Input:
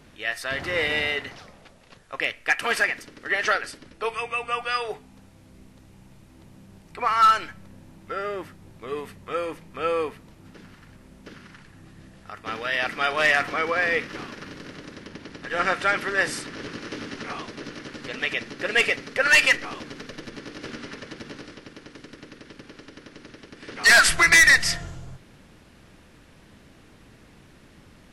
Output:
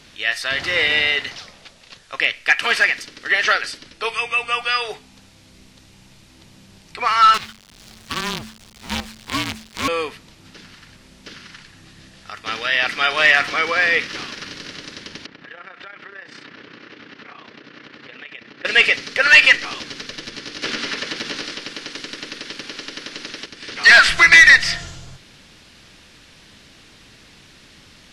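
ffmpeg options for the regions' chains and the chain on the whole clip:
-filter_complex "[0:a]asettb=1/sr,asplit=3[s0][s1][s2];[s0]atrim=end=7.344[s3];[s1]atrim=start=7.34:end=9.88,asetpts=PTS-STARTPTS,afade=t=in:d=0.004:c=qsin,afade=t=out:st=2.536:d=0.004:c=qsin,equalizer=f=290:t=o:w=0.36:g=9.5,acrusher=bits=5:dc=4:mix=0:aa=0.000001,afreqshift=-220[s4];[s2]atrim=start=9.876[s5];[s3][s4]acrossfade=d=0.004:c1=hsin:c2=qsin[s6];[s6][s5]acrossfade=d=0.004:c1=qsin:c2=hsin,asettb=1/sr,asplit=3[s7][s8][s9];[s7]atrim=end=15.264[s10];[s8]atrim=start=15.26:end=18.65,asetpts=PTS-STARTPTS,afade=t=in:d=0.004:c=qsin,afade=t=out:st=3.386:d=0.004:c=qsin,highpass=110,lowpass=2200,tremolo=f=31:d=0.667,acompressor=threshold=0.01:ratio=8:attack=3.2:release=140:knee=1:detection=peak[s11];[s9]atrim=start=18.646[s12];[s10][s11]acrossfade=d=0.004:c1=hsin:c2=qsin[s13];[s13][s12]acrossfade=d=0.004:c1=qsin:c2=hsin,asettb=1/sr,asplit=3[s14][s15][s16];[s14]atrim=end=20.624[s17];[s15]atrim=start=20.62:end=23.46,asetpts=PTS-STARTPTS,afade=t=in:d=0.004:c=qsin,afade=t=out:st=2.836:d=0.004:c=qsin,acontrast=87,equalizer=f=63:w=0.78:g=-15[s18];[s16]atrim=start=23.456[s19];[s17][s18]acrossfade=d=0.004:c1=hsin:c2=qsin[s20];[s20][s19]acrossfade=d=0.004:c1=qsin:c2=hsin,equalizer=f=4400:w=0.5:g=14.5,acrossover=split=3200[s21][s22];[s22]acompressor=threshold=0.0447:ratio=4:attack=1:release=60[s23];[s21][s23]amix=inputs=2:normalize=0"

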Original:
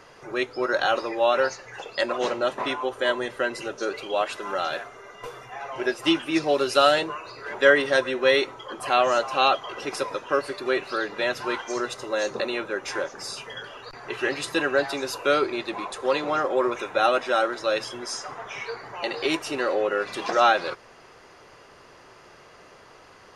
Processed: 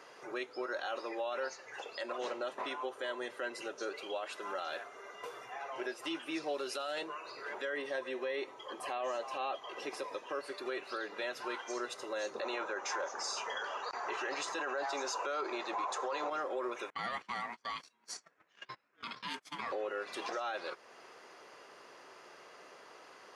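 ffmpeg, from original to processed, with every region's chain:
-filter_complex "[0:a]asettb=1/sr,asplit=3[s0][s1][s2];[s0]atrim=end=7.764[s3];[s1]atrim=start=7.76:end=10.35,asetpts=PTS-STARTPTS,afade=t=in:d=0.004:c=qsin,afade=t=out:st=2.586:d=0.004:c=qsin,bandreject=f=1400:w=5.4,acrossover=split=2600[s4][s5];[s5]acompressor=threshold=0.0141:ratio=4:attack=1:release=60[s6];[s4][s6]amix=inputs=2:normalize=0[s7];[s2]atrim=start=10.346[s8];[s3][s7]acrossfade=d=0.004:c1=hsin:c2=qsin[s9];[s9][s8]acrossfade=d=0.004:c1=qsin:c2=hsin,asettb=1/sr,asplit=3[s10][s11][s12];[s10]atrim=end=12.414[s13];[s11]atrim=start=12.41:end=16.3,asetpts=PTS-STARTPTS,afade=t=in:d=0.004:c=qsin,afade=t=out:st=3.886:d=0.004:c=qsin,lowpass=f=6600:t=q:w=3.7,equalizer=f=930:w=0.71:g=14.5[s14];[s12]atrim=start=16.296[s15];[s13][s14]acrossfade=d=0.004:c1=hsin:c2=qsin[s16];[s16][s15]acrossfade=d=0.004:c1=qsin:c2=hsin,asettb=1/sr,asplit=3[s17][s18][s19];[s17]atrim=end=16.904[s20];[s18]atrim=start=16.9:end=19.72,asetpts=PTS-STARTPTS,afade=t=in:d=0.004:c=qsin,afade=t=out:st=2.816:d=0.004:c=qsin,highpass=340,aeval=exprs='val(0)*sin(2*PI*590*n/s)':c=same,agate=range=0.0398:threshold=0.0158:ratio=16:release=100:detection=peak[s21];[s19]atrim=start=19.716[s22];[s20][s21]acrossfade=d=0.004:c1=hsin:c2=qsin[s23];[s23][s22]acrossfade=d=0.004:c1=qsin:c2=hsin,highpass=290,acompressor=threshold=0.01:ratio=1.5,alimiter=limit=0.0631:level=0:latency=1:release=28,volume=0.596"

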